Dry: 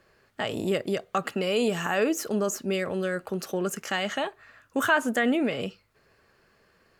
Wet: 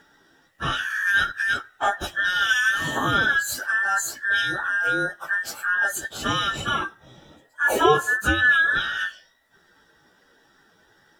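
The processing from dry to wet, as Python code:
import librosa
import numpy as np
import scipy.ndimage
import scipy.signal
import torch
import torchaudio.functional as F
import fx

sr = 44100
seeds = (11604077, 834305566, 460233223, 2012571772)

y = fx.band_invert(x, sr, width_hz=2000)
y = fx.stretch_vocoder_free(y, sr, factor=1.6)
y = F.gain(torch.from_numpy(y), 7.0).numpy()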